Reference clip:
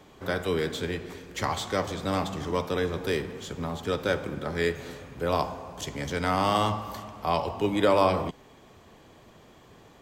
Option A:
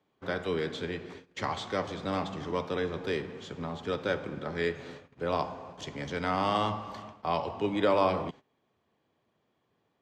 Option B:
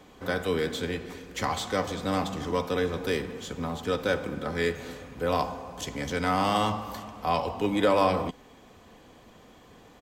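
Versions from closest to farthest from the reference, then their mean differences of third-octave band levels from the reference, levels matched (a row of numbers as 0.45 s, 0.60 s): B, A; 1.0 dB, 5.5 dB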